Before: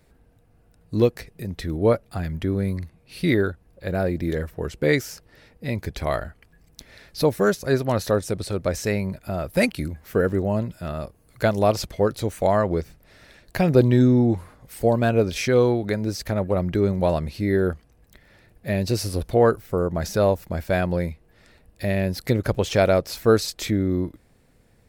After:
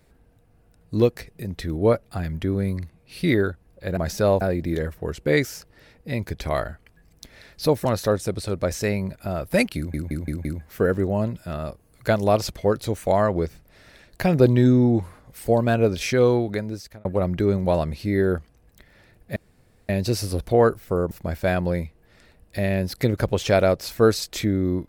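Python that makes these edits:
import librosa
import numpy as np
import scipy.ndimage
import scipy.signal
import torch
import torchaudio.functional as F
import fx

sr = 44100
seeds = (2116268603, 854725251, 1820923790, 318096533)

y = fx.edit(x, sr, fx.cut(start_s=7.41, length_s=0.47),
    fx.stutter(start_s=9.8, slice_s=0.17, count=5),
    fx.fade_out_span(start_s=15.78, length_s=0.62),
    fx.insert_room_tone(at_s=18.71, length_s=0.53),
    fx.move(start_s=19.93, length_s=0.44, to_s=3.97), tone=tone)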